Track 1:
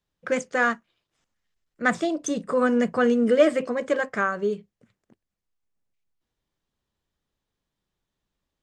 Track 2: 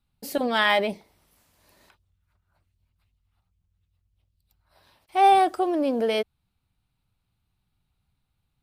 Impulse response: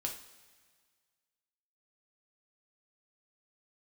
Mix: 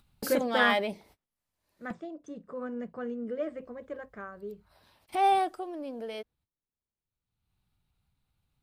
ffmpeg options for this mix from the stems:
-filter_complex "[0:a]lowpass=frequency=1100:poles=1,volume=-2dB[link_01];[1:a]agate=range=-41dB:threshold=-53dB:ratio=16:detection=peak,acompressor=mode=upward:threshold=-22dB:ratio=2.5,volume=4dB,afade=type=out:start_time=1.48:duration=0.71:silence=0.281838,afade=type=in:start_time=3.42:duration=0.24:silence=0.316228,afade=type=out:start_time=5.35:duration=0.3:silence=0.421697,asplit=2[link_02][link_03];[link_03]apad=whole_len=380295[link_04];[link_01][link_04]sidechaingate=range=-13dB:threshold=-55dB:ratio=16:detection=peak[link_05];[link_05][link_02]amix=inputs=2:normalize=0"

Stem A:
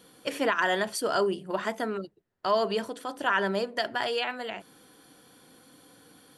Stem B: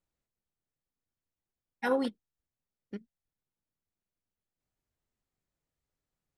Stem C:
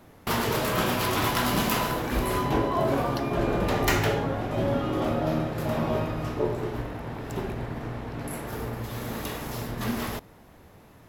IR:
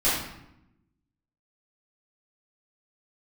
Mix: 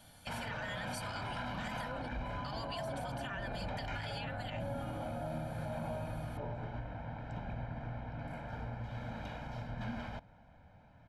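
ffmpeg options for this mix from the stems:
-filter_complex "[0:a]highpass=1400,aecho=1:1:3.4:0.81,alimiter=limit=-24dB:level=0:latency=1:release=108,volume=-5dB[link_01];[1:a]volume=-13dB[link_02];[2:a]lowpass=2800,aecho=1:1:1.3:0.9,alimiter=limit=-17dB:level=0:latency=1:release=14,volume=-11dB[link_03];[link_01][link_02][link_03]amix=inputs=3:normalize=0,alimiter=level_in=7.5dB:limit=-24dB:level=0:latency=1:release=115,volume=-7.5dB"

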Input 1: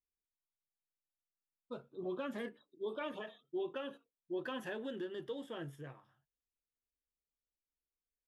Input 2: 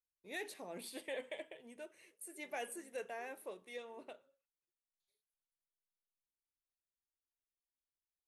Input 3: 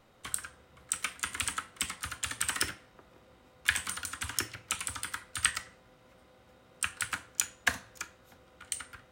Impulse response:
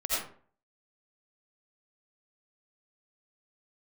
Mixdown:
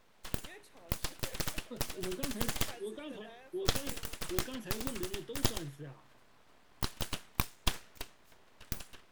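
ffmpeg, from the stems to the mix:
-filter_complex "[0:a]acrossover=split=400|3000[link_01][link_02][link_03];[link_02]acompressor=threshold=-56dB:ratio=6[link_04];[link_01][link_04][link_03]amix=inputs=3:normalize=0,volume=3dB[link_05];[1:a]adelay=150,volume=-9.5dB[link_06];[2:a]aeval=exprs='abs(val(0))':channel_layout=same,volume=-1dB[link_07];[link_05][link_06][link_07]amix=inputs=3:normalize=0"

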